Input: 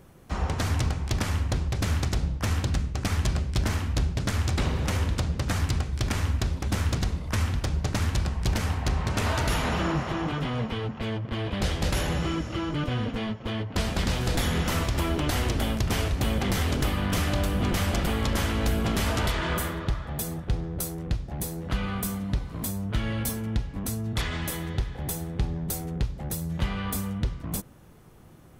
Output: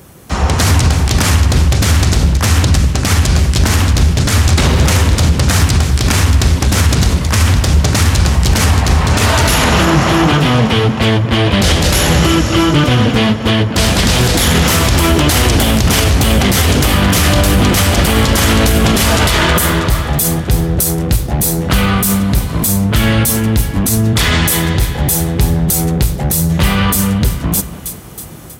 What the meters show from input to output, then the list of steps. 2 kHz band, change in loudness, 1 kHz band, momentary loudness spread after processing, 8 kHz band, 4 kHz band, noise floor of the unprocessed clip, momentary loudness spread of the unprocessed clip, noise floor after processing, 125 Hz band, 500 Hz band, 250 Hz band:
+17.0 dB, +16.5 dB, +16.0 dB, 4 LU, +20.5 dB, +18.5 dB, -41 dBFS, 5 LU, -21 dBFS, +16.0 dB, +16.0 dB, +16.5 dB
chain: HPF 49 Hz 24 dB/oct; high shelf 4300 Hz +10 dB; on a send: split-band echo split 1800 Hz, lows 0.197 s, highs 0.32 s, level -15 dB; on the sum: AGC gain up to 6.5 dB; in parallel at -9 dB: hard clip -20 dBFS, distortion -9 dB; on the sum: maximiser +11 dB; Doppler distortion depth 0.14 ms; gain -1 dB

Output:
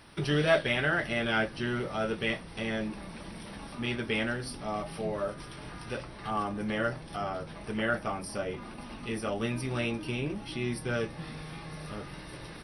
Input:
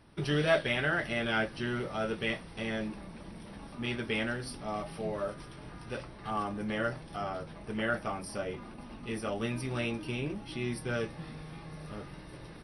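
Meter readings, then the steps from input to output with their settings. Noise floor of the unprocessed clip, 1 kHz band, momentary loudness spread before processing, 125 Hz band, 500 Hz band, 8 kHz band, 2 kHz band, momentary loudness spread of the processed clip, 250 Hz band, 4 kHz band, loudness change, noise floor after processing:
-48 dBFS, +2.0 dB, 15 LU, +2.0 dB, +2.0 dB, +3.0 dB, +2.0 dB, 14 LU, +2.0 dB, +2.0 dB, +2.0 dB, -45 dBFS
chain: mismatched tape noise reduction encoder only; gain +2 dB

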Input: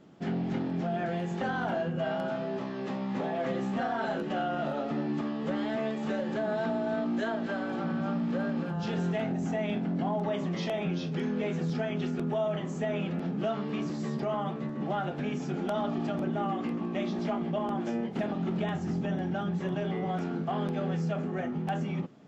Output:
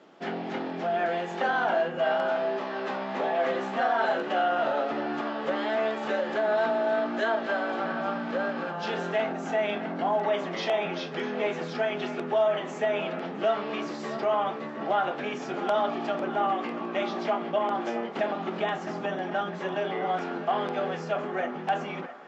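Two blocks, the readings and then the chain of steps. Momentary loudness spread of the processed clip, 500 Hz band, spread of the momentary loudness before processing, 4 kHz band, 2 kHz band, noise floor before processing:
6 LU, +6.0 dB, 2 LU, +6.0 dB, +7.5 dB, -36 dBFS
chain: HPF 480 Hz 12 dB/oct; air absorption 87 m; on a send: narrowing echo 0.659 s, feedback 71%, band-pass 1300 Hz, level -11.5 dB; on the sum: gain +8 dB

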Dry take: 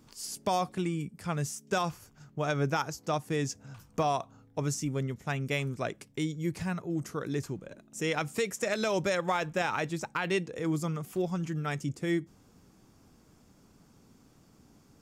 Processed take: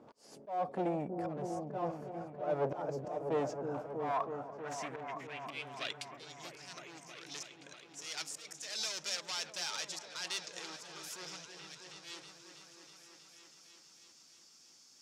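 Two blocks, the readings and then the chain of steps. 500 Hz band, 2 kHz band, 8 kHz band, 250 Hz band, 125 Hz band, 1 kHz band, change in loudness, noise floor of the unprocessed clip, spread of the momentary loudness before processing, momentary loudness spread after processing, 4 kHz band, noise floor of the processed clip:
-6.5 dB, -10.0 dB, -3.5 dB, -11.0 dB, -15.0 dB, -6.5 dB, -7.5 dB, -61 dBFS, 7 LU, 21 LU, 0.0 dB, -61 dBFS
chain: overloaded stage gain 33.5 dB; band-pass sweep 590 Hz -> 5400 Hz, 3.22–6.59; auto swell 0.274 s; on a send: repeats that get brighter 0.321 s, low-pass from 400 Hz, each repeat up 1 oct, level -3 dB; on the sum: gain +13 dB

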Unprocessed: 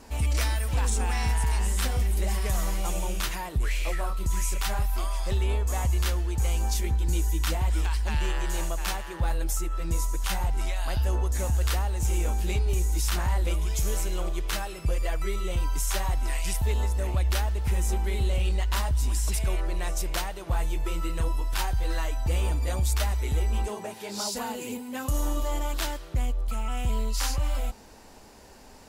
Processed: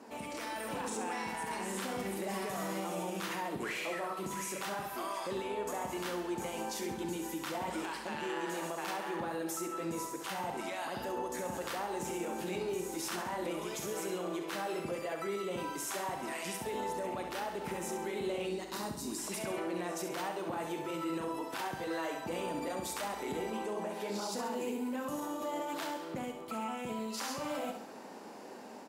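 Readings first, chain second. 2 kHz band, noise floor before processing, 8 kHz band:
-4.5 dB, -44 dBFS, -8.5 dB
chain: HPF 200 Hz 24 dB/oct; spectral gain 18.46–19.19, 470–3600 Hz -9 dB; high shelf 2200 Hz -11.5 dB; limiter -34.5 dBFS, peak gain reduction 11 dB; AGC gain up to 4.5 dB; doubler 40 ms -11.5 dB; on a send: feedback echo 67 ms, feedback 49%, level -7.5 dB

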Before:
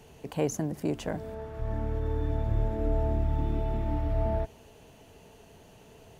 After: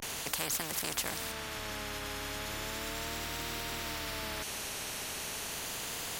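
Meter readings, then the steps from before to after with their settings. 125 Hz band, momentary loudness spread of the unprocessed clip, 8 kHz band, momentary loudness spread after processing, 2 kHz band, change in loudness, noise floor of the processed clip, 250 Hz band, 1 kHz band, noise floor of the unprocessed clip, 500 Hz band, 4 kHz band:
-16.5 dB, 8 LU, n/a, 6 LU, +11.0 dB, -4.5 dB, -40 dBFS, -11.0 dB, -1.5 dB, -55 dBFS, -9.5 dB, +16.0 dB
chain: vibrato 0.36 Hz 97 cents; tilt shelf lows -6.5 dB; spectral compressor 4:1; gain +4.5 dB

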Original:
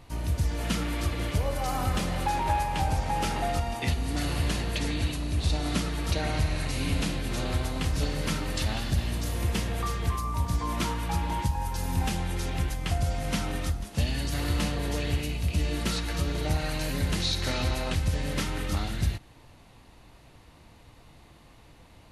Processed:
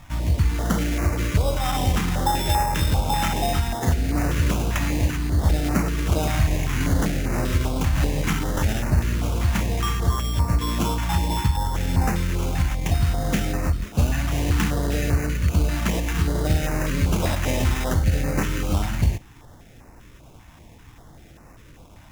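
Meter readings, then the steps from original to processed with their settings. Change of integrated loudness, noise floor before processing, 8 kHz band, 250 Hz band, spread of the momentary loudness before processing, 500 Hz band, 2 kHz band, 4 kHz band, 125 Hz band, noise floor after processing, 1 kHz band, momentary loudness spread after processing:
+6.0 dB, -54 dBFS, +5.0 dB, +6.5 dB, 3 LU, +5.5 dB, +5.0 dB, +1.5 dB, +7.0 dB, -47 dBFS, +4.5 dB, 2 LU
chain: sample-and-hold 10×; stepped notch 5.1 Hz 430–3300 Hz; gain +7 dB

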